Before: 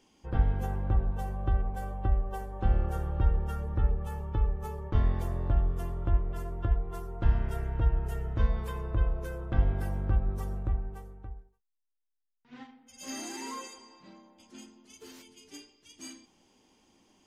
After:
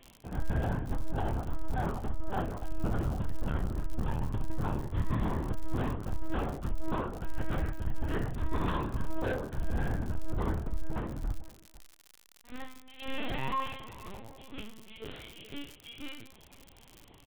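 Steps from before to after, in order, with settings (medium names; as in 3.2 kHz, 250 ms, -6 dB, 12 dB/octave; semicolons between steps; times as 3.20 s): distance through air 140 m; on a send: multi-tap echo 56/155/499 ms -6/-17.5/-19.5 dB; on the sum: LPC vocoder at 8 kHz pitch kept; reverse; compression 12:1, threshold -34 dBFS, peak gain reduction 18 dB; reverse; doubling 28 ms -9.5 dB; crackle 94 per s -50 dBFS; treble shelf 2.5 kHz +7.5 dB; trim +7.5 dB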